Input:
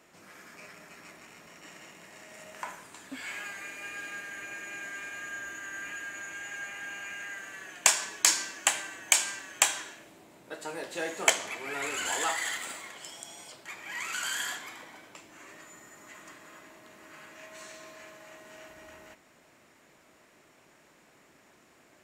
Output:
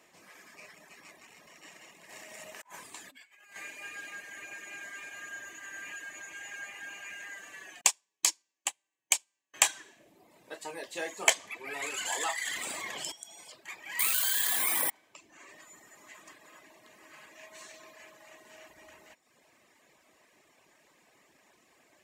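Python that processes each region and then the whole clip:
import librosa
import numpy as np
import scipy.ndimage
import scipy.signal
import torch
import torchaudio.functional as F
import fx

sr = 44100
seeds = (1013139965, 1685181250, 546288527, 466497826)

y = fx.chain(x, sr, fx.high_shelf(hz=9400.0, db=4.0),
    fx.over_compress(threshold_db=-46.0, ratio=-0.5), at=(2.09, 3.56))
y = fx.chain(y, sr, fx.peak_eq(hz=1600.0, db=-9.0, octaves=0.65),
    fx.notch(hz=650.0, q=9.7),
    fx.upward_expand(threshold_db=-38.0, expansion=2.5), at=(7.81, 9.54))
y = fx.chain(y, sr, fx.low_shelf(hz=300.0, db=6.5),
    fx.env_flatten(amount_pct=70), at=(12.47, 13.12))
y = fx.chain(y, sr, fx.resample_bad(factor=4, down='none', up='zero_stuff'),
    fx.env_flatten(amount_pct=100), at=(13.99, 14.9))
y = fx.low_shelf(y, sr, hz=340.0, db=-7.0)
y = fx.notch(y, sr, hz=1400.0, q=6.0)
y = fx.dereverb_blind(y, sr, rt60_s=0.88)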